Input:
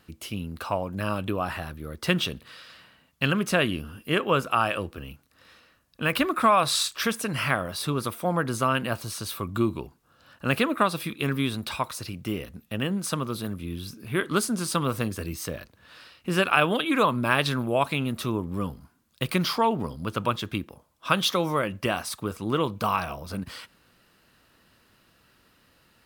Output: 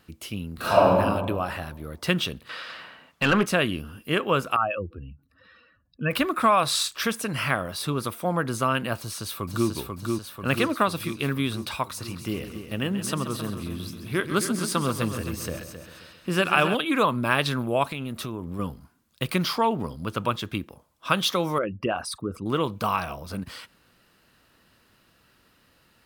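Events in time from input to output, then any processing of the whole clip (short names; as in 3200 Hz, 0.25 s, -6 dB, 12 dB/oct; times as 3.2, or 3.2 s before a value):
0.54–0.95 reverb throw, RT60 1.5 s, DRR -11.5 dB
2.49–3.46 overdrive pedal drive 21 dB, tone 1500 Hz, clips at -8 dBFS
4.56–6.11 spectral contrast raised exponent 2.3
8.98–9.69 echo throw 0.49 s, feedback 65%, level -3.5 dB
11.84–16.75 multi-head echo 0.133 s, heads first and second, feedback 41%, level -11.5 dB
17.87–18.59 compressor, threshold -28 dBFS
21.58–22.46 formant sharpening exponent 2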